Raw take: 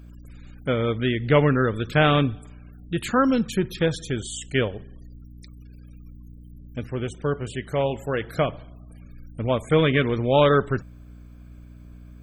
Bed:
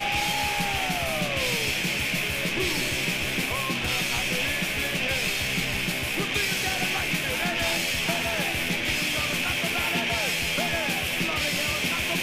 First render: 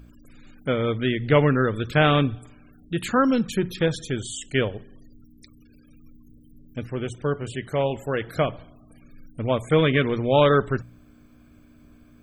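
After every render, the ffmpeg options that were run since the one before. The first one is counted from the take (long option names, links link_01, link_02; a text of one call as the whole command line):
ffmpeg -i in.wav -af "bandreject=frequency=60:width_type=h:width=4,bandreject=frequency=120:width_type=h:width=4,bandreject=frequency=180:width_type=h:width=4" out.wav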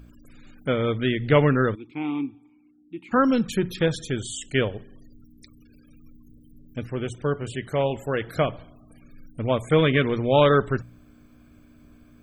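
ffmpeg -i in.wav -filter_complex "[0:a]asplit=3[link_01][link_02][link_03];[link_01]afade=type=out:start_time=1.74:duration=0.02[link_04];[link_02]asplit=3[link_05][link_06][link_07];[link_05]bandpass=frequency=300:width_type=q:width=8,volume=0dB[link_08];[link_06]bandpass=frequency=870:width_type=q:width=8,volume=-6dB[link_09];[link_07]bandpass=frequency=2240:width_type=q:width=8,volume=-9dB[link_10];[link_08][link_09][link_10]amix=inputs=3:normalize=0,afade=type=in:start_time=1.74:duration=0.02,afade=type=out:start_time=3.11:duration=0.02[link_11];[link_03]afade=type=in:start_time=3.11:duration=0.02[link_12];[link_04][link_11][link_12]amix=inputs=3:normalize=0" out.wav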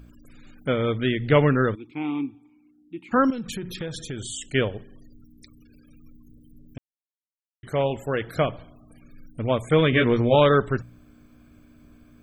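ffmpeg -i in.wav -filter_complex "[0:a]asettb=1/sr,asplit=3[link_01][link_02][link_03];[link_01]atrim=end=3.304[link_04];[link_02]atrim=start=3.3:end=4.48,asetpts=PTS-STARTPTS,afade=type=in:duration=0.004:curve=qsin,afade=type=out:start_time=1.176:duration=0.004:curve=qsin,acompressor=threshold=-28dB:ratio=6:attack=3.2:release=140:knee=1:detection=peak[link_05];[link_03]atrim=start=4.476[link_06];[link_04][link_05]acrossfade=duration=0.004:curve1=hsin:curve2=qsin[link_07];[link_07][link_06]acrossfade=duration=0.004:curve1=qsin:curve2=hsin,asettb=1/sr,asplit=3[link_08][link_09][link_10];[link_08]atrim=end=9.914[link_11];[link_09]atrim=start=9.91:end=10.35,asetpts=PTS-STARTPTS,afade=type=in:duration=0.004:curve=qsin,afade=type=out:start_time=0.436:duration=0.004:curve=qsin,asplit=2[link_12][link_13];[link_13]adelay=17,volume=-2dB[link_14];[link_12][link_14]amix=inputs=2:normalize=0,atrim=end_sample=19404[link_15];[link_10]atrim=start=10.346[link_16];[link_11][link_15]acrossfade=duration=0.004:curve1=hsin:curve2=qsin[link_17];[link_17][link_16]acrossfade=duration=0.004:curve1=qsin:curve2=hsin,asplit=3[link_18][link_19][link_20];[link_18]atrim=end=6.78,asetpts=PTS-STARTPTS,afade=type=out:start_time=6.776:duration=0.004:curve=hsin[link_21];[link_19]atrim=start=6.78:end=7.63,asetpts=PTS-STARTPTS,volume=0[link_22];[link_20]atrim=start=7.63,asetpts=PTS-STARTPTS,afade=type=in:duration=0.004:curve=hsin[link_23];[link_21][link_22][link_23]concat=n=3:v=0:a=1" out.wav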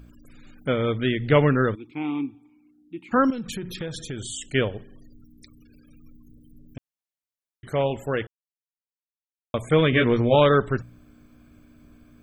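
ffmpeg -i in.wav -filter_complex "[0:a]asplit=3[link_01][link_02][link_03];[link_01]atrim=end=8.27,asetpts=PTS-STARTPTS,afade=type=out:start_time=8.266:duration=0.004:curve=hsin[link_04];[link_02]atrim=start=8.27:end=9.54,asetpts=PTS-STARTPTS,volume=0[link_05];[link_03]atrim=start=9.54,asetpts=PTS-STARTPTS,afade=type=in:duration=0.004:curve=hsin[link_06];[link_04][link_05][link_06]concat=n=3:v=0:a=1" out.wav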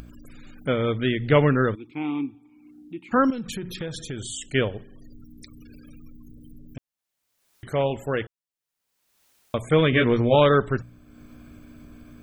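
ffmpeg -i in.wav -af "acompressor=mode=upward:threshold=-37dB:ratio=2.5" out.wav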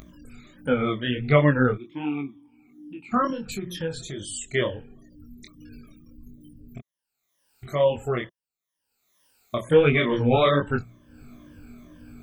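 ffmpeg -i in.wav -af "afftfilt=real='re*pow(10,15/40*sin(2*PI*(1.2*log(max(b,1)*sr/1024/100)/log(2)-(-2.2)*(pts-256)/sr)))':imag='im*pow(10,15/40*sin(2*PI*(1.2*log(max(b,1)*sr/1024/100)/log(2)-(-2.2)*(pts-256)/sr)))':win_size=1024:overlap=0.75,flanger=delay=20:depth=4.9:speed=1.4" out.wav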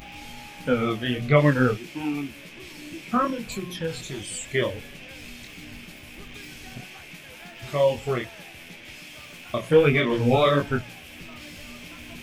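ffmpeg -i in.wav -i bed.wav -filter_complex "[1:a]volume=-16.5dB[link_01];[0:a][link_01]amix=inputs=2:normalize=0" out.wav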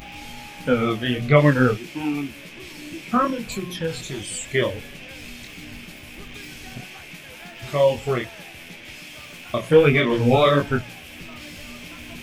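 ffmpeg -i in.wav -af "volume=3dB" out.wav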